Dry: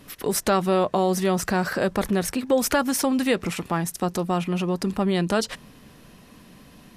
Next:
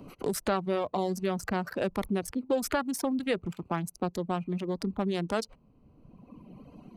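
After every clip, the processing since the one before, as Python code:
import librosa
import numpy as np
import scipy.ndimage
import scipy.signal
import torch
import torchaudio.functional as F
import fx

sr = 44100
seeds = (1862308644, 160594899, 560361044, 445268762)

y = fx.wiener(x, sr, points=25)
y = fx.dereverb_blind(y, sr, rt60_s=1.5)
y = fx.band_squash(y, sr, depth_pct=40)
y = y * librosa.db_to_amplitude(-5.5)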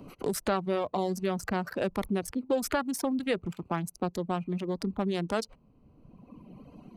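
y = x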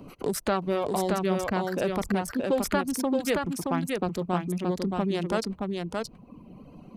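y = x + 10.0 ** (-3.5 / 20.0) * np.pad(x, (int(623 * sr / 1000.0), 0))[:len(x)]
y = y * librosa.db_to_amplitude(2.0)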